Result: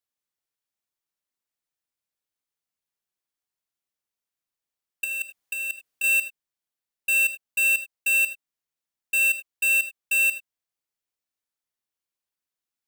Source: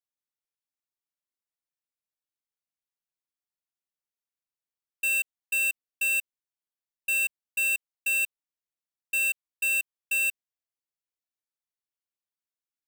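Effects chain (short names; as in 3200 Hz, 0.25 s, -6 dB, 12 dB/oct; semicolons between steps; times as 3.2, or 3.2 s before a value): 5.04–6.04 negative-ratio compressor -31 dBFS, ratio -0.5; non-linear reverb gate 0.11 s rising, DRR 10.5 dB; gain +3.5 dB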